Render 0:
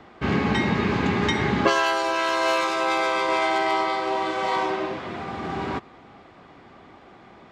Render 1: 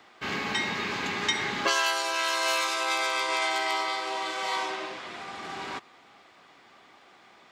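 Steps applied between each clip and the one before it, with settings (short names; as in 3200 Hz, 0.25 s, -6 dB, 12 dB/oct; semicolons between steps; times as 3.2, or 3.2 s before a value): tilt +4 dB/oct; gain -6 dB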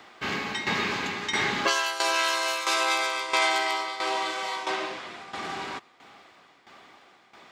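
tremolo saw down 1.5 Hz, depth 75%; gain +5.5 dB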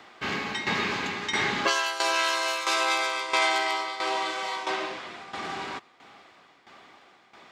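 high shelf 11000 Hz -6.5 dB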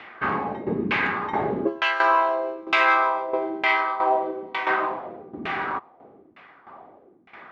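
LFO low-pass saw down 1.1 Hz 250–2600 Hz; gain +4 dB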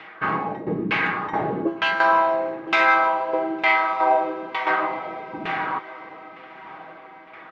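comb 6.3 ms, depth 50%; diffused feedback echo 1.161 s, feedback 41%, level -16 dB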